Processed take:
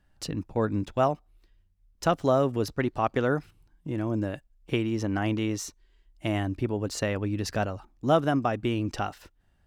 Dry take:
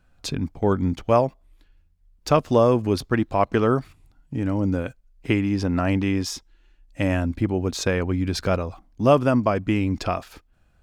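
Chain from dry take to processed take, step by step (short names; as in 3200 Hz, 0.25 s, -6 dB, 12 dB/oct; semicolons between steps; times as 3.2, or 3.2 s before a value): varispeed +12%; gain -5.5 dB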